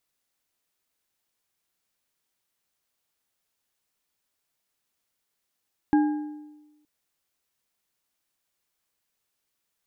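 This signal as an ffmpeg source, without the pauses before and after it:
-f lavfi -i "aevalsrc='0.178*pow(10,-3*t/1.13)*sin(2*PI*300*t)+0.0631*pow(10,-3*t/0.834)*sin(2*PI*827.1*t)+0.0224*pow(10,-3*t/0.681)*sin(2*PI*1621.2*t)':d=0.92:s=44100"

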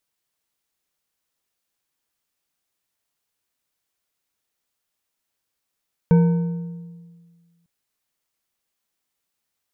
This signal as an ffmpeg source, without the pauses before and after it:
-f lavfi -i "aevalsrc='0.335*pow(10,-3*t/1.72)*sin(2*PI*170*t)+0.112*pow(10,-3*t/1.269)*sin(2*PI*468.7*t)+0.0376*pow(10,-3*t/1.037)*sin(2*PI*918.7*t)+0.0126*pow(10,-3*t/0.892)*sin(2*PI*1518.6*t)+0.00422*pow(10,-3*t/0.791)*sin(2*PI*2267.8*t)':d=1.55:s=44100"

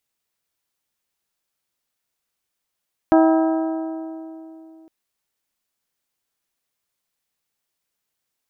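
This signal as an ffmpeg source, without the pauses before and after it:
-f lavfi -i "aevalsrc='0.282*pow(10,-3*t/3.08)*sin(2*PI*322*t)+0.178*pow(10,-3*t/2.502)*sin(2*PI*644*t)+0.112*pow(10,-3*t/2.369)*sin(2*PI*772.8*t)+0.0708*pow(10,-3*t/2.215)*sin(2*PI*966*t)+0.0447*pow(10,-3*t/2.032)*sin(2*PI*1288*t)+0.0282*pow(10,-3*t/1.9)*sin(2*PI*1610*t)':d=1.76:s=44100"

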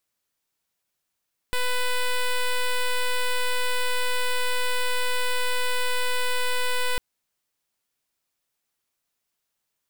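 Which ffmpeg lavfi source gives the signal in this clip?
-f lavfi -i "aevalsrc='0.0708*(2*lt(mod(498*t,1),0.08)-1)':d=5.45:s=44100"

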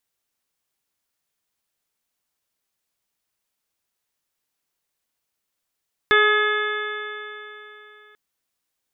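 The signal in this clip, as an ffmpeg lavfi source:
-f lavfi -i "aevalsrc='0.126*pow(10,-3*t/3.29)*sin(2*PI*420.27*t)+0.0282*pow(10,-3*t/3.29)*sin(2*PI*842.18*t)+0.119*pow(10,-3*t/3.29)*sin(2*PI*1267.35*t)+0.178*pow(10,-3*t/3.29)*sin(2*PI*1697.38*t)+0.0708*pow(10,-3*t/3.29)*sin(2*PI*2133.85*t)+0.0224*pow(10,-3*t/3.29)*sin(2*PI*2578.29*t)+0.0158*pow(10,-3*t/3.29)*sin(2*PI*3032.19*t)+0.0708*pow(10,-3*t/3.29)*sin(2*PI*3496.98*t)':d=2.04:s=44100"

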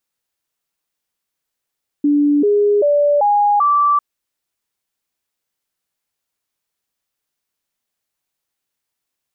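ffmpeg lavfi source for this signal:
-f lavfi -i "aevalsrc='0.299*clip(min(mod(t,0.39),0.39-mod(t,0.39))/0.005,0,1)*sin(2*PI*291*pow(2,floor(t/0.39)/2)*mod(t,0.39))':d=1.95:s=44100"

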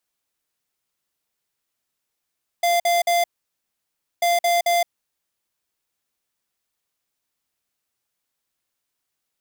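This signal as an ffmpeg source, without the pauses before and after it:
-f lavfi -i "aevalsrc='0.119*(2*lt(mod(692*t,1),0.5)-1)*clip(min(mod(mod(t,1.59),0.22),0.17-mod(mod(t,1.59),0.22))/0.005,0,1)*lt(mod(t,1.59),0.66)':d=3.18:s=44100"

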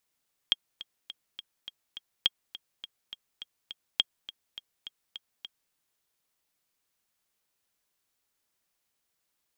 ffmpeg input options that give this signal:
-f lavfi -i "aevalsrc='pow(10,(-9.5-17*gte(mod(t,6*60/207),60/207))/20)*sin(2*PI*3250*mod(t,60/207))*exp(-6.91*mod(t,60/207)/0.03)':d=5.21:s=44100"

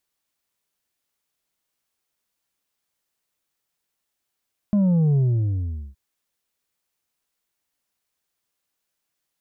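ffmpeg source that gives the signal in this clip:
-f lavfi -i "aevalsrc='0.158*clip((1.22-t)/0.78,0,1)*tanh(1.68*sin(2*PI*210*1.22/log(65/210)*(exp(log(65/210)*t/1.22)-1)))/tanh(1.68)':d=1.22:s=44100"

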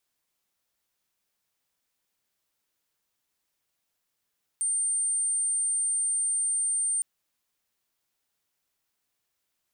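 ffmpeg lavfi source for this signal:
-f lavfi -i "aevalsrc='0.0631*sin(2*PI*8880*t)':d=2.41:s=44100"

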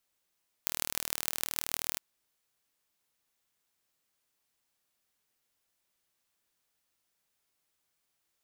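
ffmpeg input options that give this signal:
-f lavfi -i "aevalsrc='0.891*eq(mod(n,1125),0)*(0.5+0.5*eq(mod(n,6750),0))':d=1.31:s=44100"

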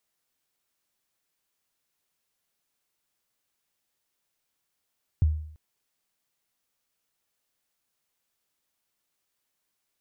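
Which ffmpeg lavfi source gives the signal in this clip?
-f lavfi -i "aevalsrc='0.178*pow(10,-3*t/0.62)*sin(2*PI*(120*0.02/log(77/120)*(exp(log(77/120)*min(t,0.02)/0.02)-1)+77*max(t-0.02,0)))':d=0.34:s=44100"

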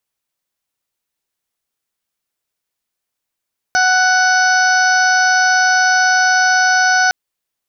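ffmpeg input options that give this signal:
-f lavfi -i "aevalsrc='0.178*sin(2*PI*742*t)+0.251*sin(2*PI*1484*t)+0.0335*sin(2*PI*2226*t)+0.02*sin(2*PI*2968*t)+0.0178*sin(2*PI*3710*t)+0.0562*sin(2*PI*4452*t)+0.0631*sin(2*PI*5194*t)+0.0794*sin(2*PI*5936*t)':d=3.36:s=44100"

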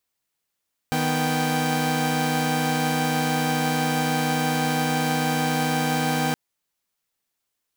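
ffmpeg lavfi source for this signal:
-f lavfi -i "aevalsrc='0.0708*((2*mod(155.56*t,1)-1)+(2*mod(246.94*t,1)-1)+(2*mod(783.99*t,1)-1))':d=5.42:s=44100"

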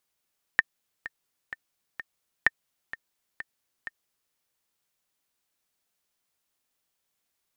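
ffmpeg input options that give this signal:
-f lavfi -i "aevalsrc='pow(10,(-5.5-16.5*gte(mod(t,4*60/128),60/128))/20)*sin(2*PI*1810*mod(t,60/128))*exp(-6.91*mod(t,60/128)/0.03)':d=3.75:s=44100"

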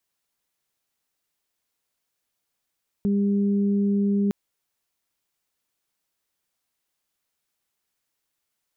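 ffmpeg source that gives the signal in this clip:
-f lavfi -i "aevalsrc='0.112*sin(2*PI*201*t)+0.0335*sin(2*PI*402*t)':d=1.26:s=44100"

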